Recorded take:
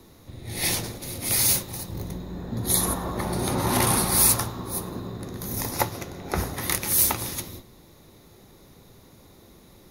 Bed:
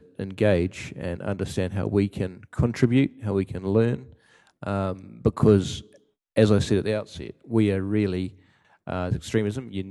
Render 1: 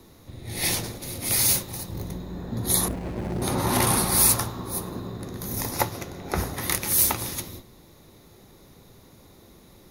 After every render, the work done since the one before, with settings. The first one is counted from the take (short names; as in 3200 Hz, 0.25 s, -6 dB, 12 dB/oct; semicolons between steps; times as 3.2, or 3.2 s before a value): 2.88–3.42 median filter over 41 samples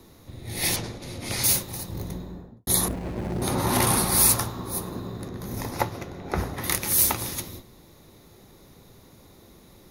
0.76–1.44 air absorption 71 m; 2.13–2.67 studio fade out; 5.28–6.64 high shelf 5000 Hz -11.5 dB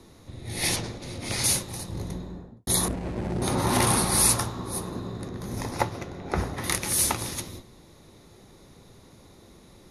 steep low-pass 11000 Hz 36 dB/oct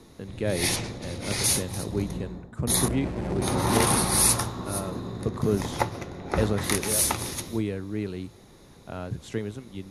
add bed -7.5 dB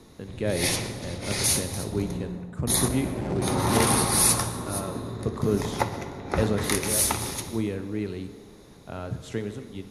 darkening echo 62 ms, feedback 84%, low-pass 4300 Hz, level -17.5 dB; non-linear reverb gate 0.39 s falling, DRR 11.5 dB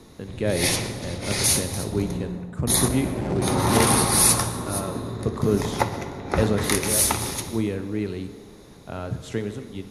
gain +3 dB